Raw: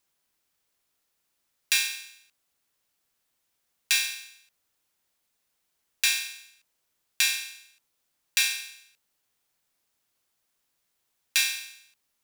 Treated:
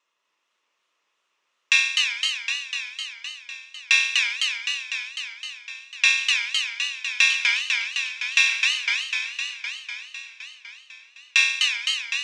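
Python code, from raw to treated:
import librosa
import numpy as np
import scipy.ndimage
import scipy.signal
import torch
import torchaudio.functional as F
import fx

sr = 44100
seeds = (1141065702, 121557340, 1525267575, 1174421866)

y = fx.cabinet(x, sr, low_hz=460.0, low_slope=12, high_hz=5700.0, hz=(1100.0, 2700.0, 4600.0), db=(6, 5, -10))
y = fx.notch_comb(y, sr, f0_hz=770.0)
y = fx.echo_warbled(y, sr, ms=253, feedback_pct=74, rate_hz=2.8, cents=210, wet_db=-3.5)
y = F.gain(torch.from_numpy(y), 6.5).numpy()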